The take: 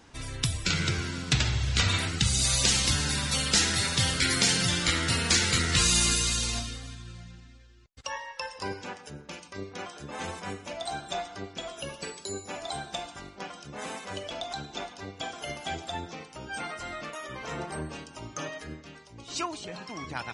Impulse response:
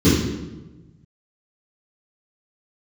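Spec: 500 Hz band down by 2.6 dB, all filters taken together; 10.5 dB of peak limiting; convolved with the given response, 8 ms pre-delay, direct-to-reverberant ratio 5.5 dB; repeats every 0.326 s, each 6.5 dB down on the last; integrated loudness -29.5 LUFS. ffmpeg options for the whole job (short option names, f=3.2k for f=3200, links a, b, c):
-filter_complex "[0:a]equalizer=f=500:t=o:g=-3.5,alimiter=limit=-19.5dB:level=0:latency=1,aecho=1:1:326|652|978|1304|1630|1956:0.473|0.222|0.105|0.0491|0.0231|0.0109,asplit=2[a][b];[1:a]atrim=start_sample=2205,adelay=8[c];[b][c]afir=irnorm=-1:irlink=0,volume=-27.5dB[d];[a][d]amix=inputs=2:normalize=0,volume=-4dB"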